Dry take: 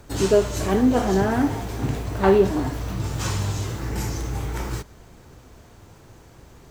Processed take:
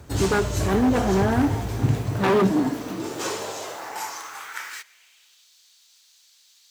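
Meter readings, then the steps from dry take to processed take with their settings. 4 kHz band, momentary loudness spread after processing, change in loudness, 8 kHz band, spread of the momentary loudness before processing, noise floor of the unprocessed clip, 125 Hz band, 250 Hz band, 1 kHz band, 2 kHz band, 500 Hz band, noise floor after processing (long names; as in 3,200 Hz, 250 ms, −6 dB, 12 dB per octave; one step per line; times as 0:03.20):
+0.5 dB, 14 LU, −1.0 dB, 0.0 dB, 10 LU, −49 dBFS, 0.0 dB, 0.0 dB, +0.5 dB, +2.5 dB, −3.5 dB, −58 dBFS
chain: wave folding −14.5 dBFS
high-pass filter sweep 76 Hz → 4,000 Hz, 0:01.66–0:05.50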